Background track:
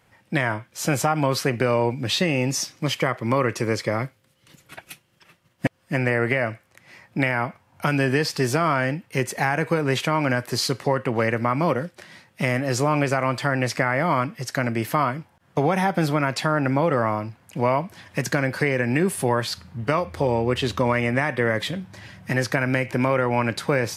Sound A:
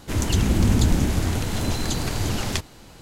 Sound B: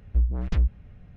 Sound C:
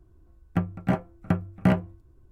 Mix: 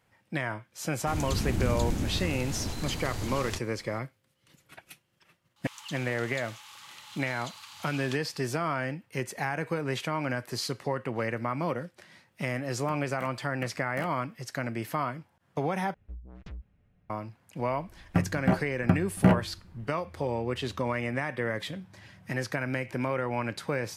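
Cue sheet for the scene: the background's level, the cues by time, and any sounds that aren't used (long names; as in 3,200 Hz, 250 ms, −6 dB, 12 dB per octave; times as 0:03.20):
background track −9 dB
0:00.98: mix in A −10 dB
0:05.56: mix in A −10 dB + Chebyshev high-pass with heavy ripple 820 Hz, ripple 9 dB
0:12.32: mix in C −13.5 dB + spectral tilt +4.5 dB per octave
0:15.94: overwrite with B −14 dB + low-shelf EQ 83 Hz −10.5 dB
0:17.59: mix in C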